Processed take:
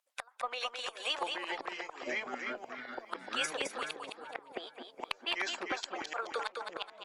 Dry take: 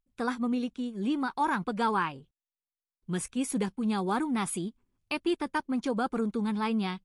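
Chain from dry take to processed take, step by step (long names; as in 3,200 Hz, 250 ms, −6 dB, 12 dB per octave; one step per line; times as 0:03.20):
elliptic high-pass filter 580 Hz, stop band 70 dB
treble cut that deepens with the level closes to 1,100 Hz, closed at −31.5 dBFS
harmonic and percussive parts rebalanced percussive +9 dB
downward compressor 5 to 1, threshold −32 dBFS, peak gain reduction 11 dB
gate with flip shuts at −26 dBFS, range −30 dB
harmonic generator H 2 −34 dB, 3 −21 dB, 4 −37 dB, 6 −39 dB, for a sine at −20 dBFS
repeating echo 213 ms, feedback 33%, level −5 dB
delay with pitch and tempo change per echo 604 ms, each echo −6 semitones, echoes 2
level +7 dB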